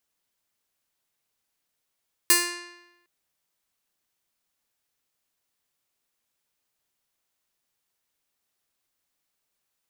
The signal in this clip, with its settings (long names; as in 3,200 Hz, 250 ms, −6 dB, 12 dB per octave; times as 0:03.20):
Karplus-Strong string F4, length 0.76 s, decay 0.99 s, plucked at 0.45, bright